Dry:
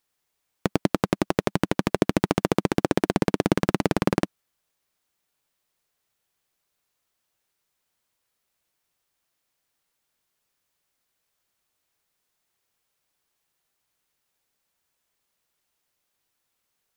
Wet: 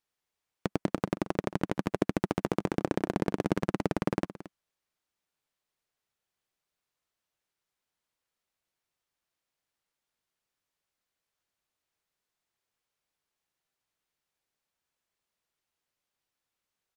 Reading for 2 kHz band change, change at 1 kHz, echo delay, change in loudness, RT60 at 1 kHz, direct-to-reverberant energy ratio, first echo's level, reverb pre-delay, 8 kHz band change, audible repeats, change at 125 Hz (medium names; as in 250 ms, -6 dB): -8.5 dB, -7.0 dB, 224 ms, -7.0 dB, no reverb, no reverb, -15.5 dB, no reverb, -11.5 dB, 1, -7.0 dB